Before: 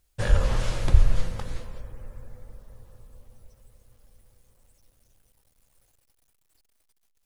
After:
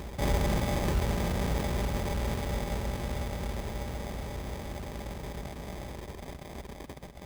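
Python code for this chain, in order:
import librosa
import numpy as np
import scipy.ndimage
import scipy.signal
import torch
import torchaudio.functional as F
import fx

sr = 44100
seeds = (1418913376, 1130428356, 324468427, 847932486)

p1 = fx.bin_compress(x, sr, power=0.4)
p2 = scipy.signal.sosfilt(scipy.signal.butter(4, 64.0, 'highpass', fs=sr, output='sos'), p1)
p3 = fx.over_compress(p2, sr, threshold_db=-30.0, ratio=-1.0)
p4 = p2 + F.gain(torch.from_numpy(p3), -1.0).numpy()
p5 = p4 + 0.8 * np.pad(p4, (int(4.9 * sr / 1000.0), 0))[:len(p4)]
p6 = fx.sample_hold(p5, sr, seeds[0], rate_hz=1400.0, jitter_pct=0)
p7 = p6 + fx.echo_single(p6, sr, ms=132, db=-12.0, dry=0)
y = F.gain(torch.from_numpy(p7), -6.0).numpy()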